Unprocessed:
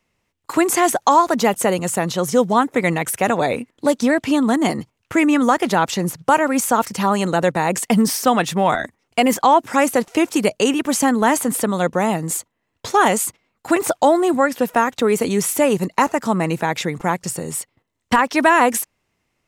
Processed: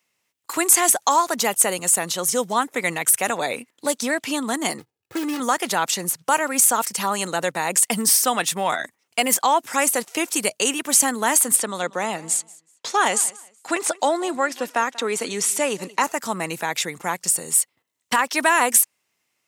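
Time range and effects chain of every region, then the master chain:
4.78–5.4 median filter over 41 samples + comb 2.4 ms, depth 55%
11.56–16.04 BPF 160–7000 Hz + feedback echo 0.188 s, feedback 24%, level -21 dB
whole clip: dynamic EQ 8900 Hz, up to +5 dB, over -39 dBFS, Q 2.4; HPF 95 Hz; tilt +3 dB/oct; gain -4.5 dB

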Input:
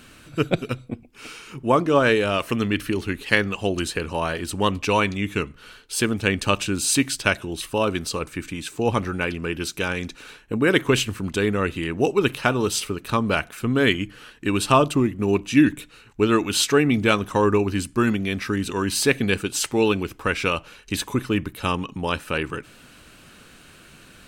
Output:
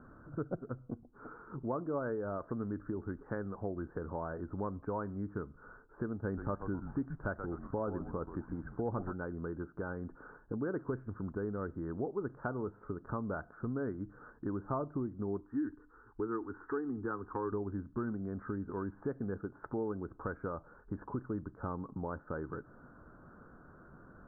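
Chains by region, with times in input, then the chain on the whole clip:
6.24–9.13 frequency-shifting echo 0.127 s, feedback 39%, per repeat -120 Hz, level -11.5 dB + sample leveller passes 1
15.4–17.52 bell 1900 Hz +13.5 dB 0.45 oct + fixed phaser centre 610 Hz, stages 6
whole clip: steep low-pass 1500 Hz 72 dB/oct; dynamic EQ 1100 Hz, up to -3 dB, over -40 dBFS, Q 2.4; compressor 2.5:1, threshold -34 dBFS; gain -5 dB

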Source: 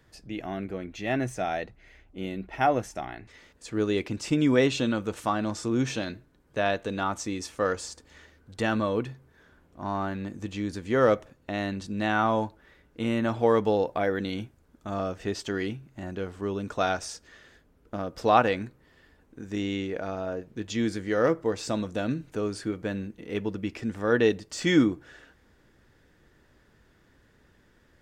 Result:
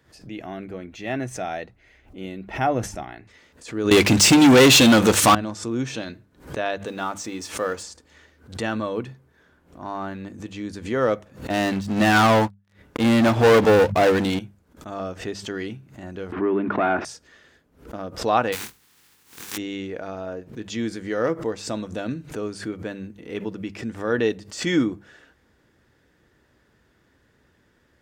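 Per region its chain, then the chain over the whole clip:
2.53–3.03 low shelf 220 Hz +8 dB + sustainer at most 130 dB/s
3.91–5.35 high shelf 2300 Hz +8.5 dB + sample leveller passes 5
6.86–7.83 G.711 law mismatch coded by mu + low shelf 67 Hz -11 dB + notches 50/100/150/200/250/300 Hz
11.5–14.39 sample leveller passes 5 + upward expander 2.5:1, over -26 dBFS
16.32–17.05 sample leveller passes 2 + speaker cabinet 180–2300 Hz, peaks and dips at 240 Hz +5 dB, 350 Hz +8 dB, 500 Hz -9 dB + fast leveller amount 50%
18.52–19.56 spectral contrast lowered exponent 0.18 + bell 610 Hz -13 dB 0.39 oct + doubler 23 ms -5 dB
whole clip: HPF 50 Hz; notches 50/100/150/200 Hz; backwards sustainer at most 140 dB/s

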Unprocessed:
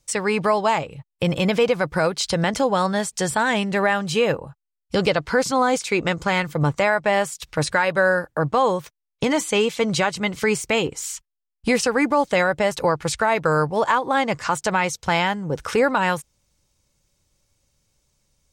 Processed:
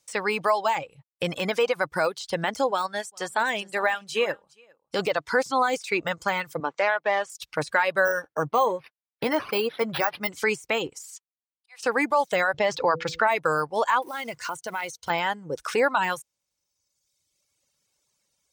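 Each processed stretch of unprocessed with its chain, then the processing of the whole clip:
2.71–4.99 bell 120 Hz -7.5 dB 1.1 oct + echo 0.406 s -14.5 dB + upward expander, over -36 dBFS
6.6–7.3 self-modulated delay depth 0.051 ms + HPF 280 Hz + air absorption 140 m
8.05–10.29 doubler 13 ms -13 dB + decimation joined by straight lines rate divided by 6×
10.99–11.83 steep high-pass 700 Hz + auto swell 0.632 s + upward expander, over -50 dBFS
12.54–13.27 LPF 5700 Hz 24 dB/oct + de-hum 164.2 Hz, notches 3 + fast leveller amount 50%
14.02–15.1 ripple EQ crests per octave 1.9, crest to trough 6 dB + compressor 2:1, threshold -28 dBFS + short-mantissa float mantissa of 2-bit
whole clip: de-esser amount 70%; reverb removal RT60 1.3 s; HPF 550 Hz 6 dB/oct

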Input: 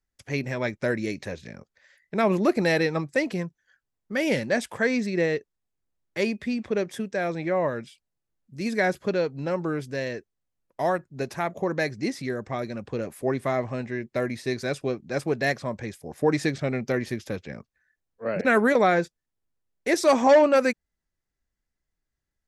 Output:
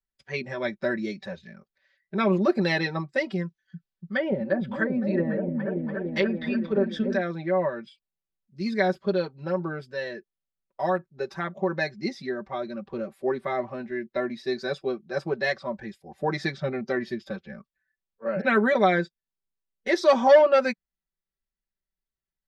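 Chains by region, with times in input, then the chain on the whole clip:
3.45–7.21 treble ducked by the level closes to 660 Hz, closed at -19.5 dBFS + high shelf 2100 Hz +10 dB + repeats that get brighter 0.288 s, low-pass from 200 Hz, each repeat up 1 oct, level 0 dB
whole clip: resonant high shelf 6100 Hz -14 dB, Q 1.5; comb 5.2 ms, depth 83%; spectral noise reduction 9 dB; gain -3.5 dB

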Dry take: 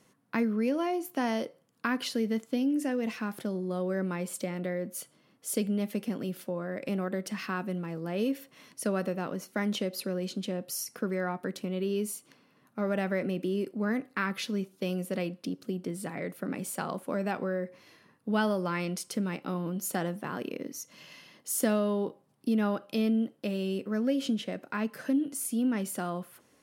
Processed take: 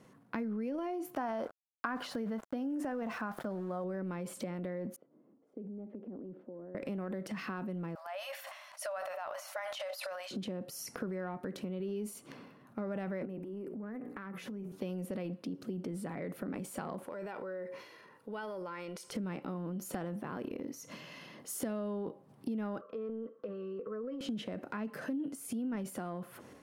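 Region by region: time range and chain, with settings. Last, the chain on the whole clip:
1.15–3.84 sample gate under -47.5 dBFS + band shelf 1000 Hz +9.5 dB
4.96–6.75 compressor 2:1, threshold -38 dBFS + ladder band-pass 350 Hz, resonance 30%
7.95–10.31 brick-wall FIR high-pass 560 Hz + sustainer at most 40 dB/s
13.25–14.72 bell 4200 Hz -12 dB 1.2 oct + notches 60/120/180/240/300/360/420/480 Hz + compressor 5:1, threshold -43 dBFS
17.06–19.12 HPF 560 Hz 6 dB/oct + compressor 1.5:1, threshold -51 dBFS + comb 2.1 ms, depth 40%
22.81–24.21 double band-pass 760 Hz, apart 1.2 oct + comb 4.5 ms, depth 74% + three-band squash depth 40%
whole clip: transient shaper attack -1 dB, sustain +8 dB; high shelf 2300 Hz -11.5 dB; compressor 3:1, threshold -45 dBFS; gain +5.5 dB

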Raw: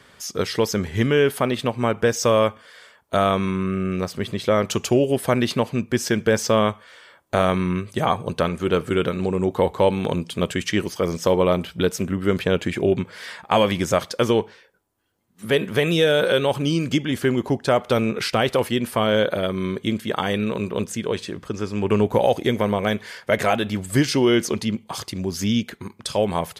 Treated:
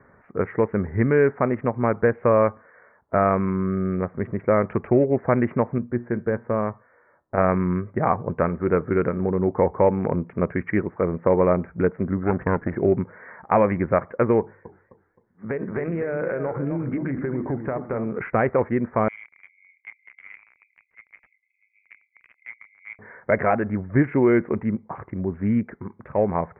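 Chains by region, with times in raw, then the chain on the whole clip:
5.78–7.38 high shelf 3600 Hz -11.5 dB + resonator 120 Hz, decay 0.29 s, mix 50%
12.23–12.76 minimum comb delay 0.64 ms + HPF 53 Hz
14.4–18.14 notches 50/100/150/200/250/300/350 Hz + compressor 16:1, threshold -21 dBFS + warbling echo 0.257 s, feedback 35%, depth 170 cents, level -8 dB
19.08–22.99 brick-wall FIR high-pass 2000 Hz + doubler 27 ms -8 dB
whole clip: Wiener smoothing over 15 samples; steep low-pass 2200 Hz 72 dB/oct

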